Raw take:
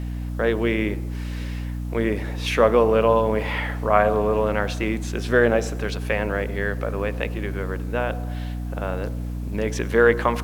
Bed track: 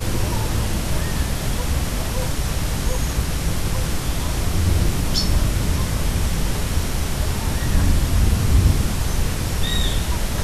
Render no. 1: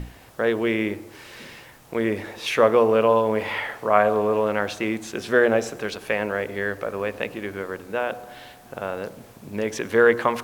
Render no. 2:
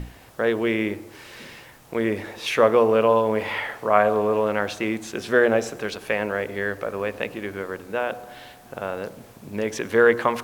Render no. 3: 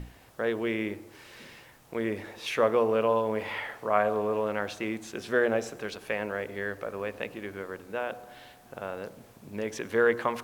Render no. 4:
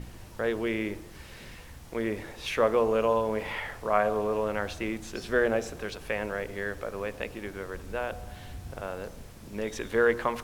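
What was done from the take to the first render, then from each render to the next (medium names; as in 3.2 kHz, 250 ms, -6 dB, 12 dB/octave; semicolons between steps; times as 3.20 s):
hum notches 60/120/180/240/300 Hz
no audible change
trim -7 dB
add bed track -26.5 dB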